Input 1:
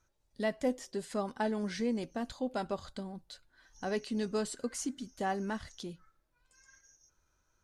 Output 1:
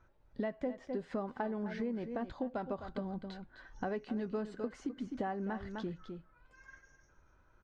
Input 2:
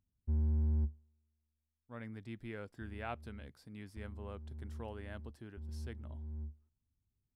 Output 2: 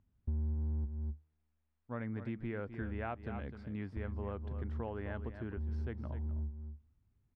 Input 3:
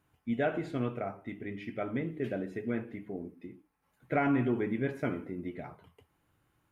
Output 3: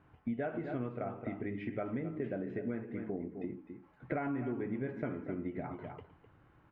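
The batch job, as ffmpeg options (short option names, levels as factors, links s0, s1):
-af "aecho=1:1:256:0.237,acompressor=threshold=0.00562:ratio=5,lowpass=1900,volume=2.99"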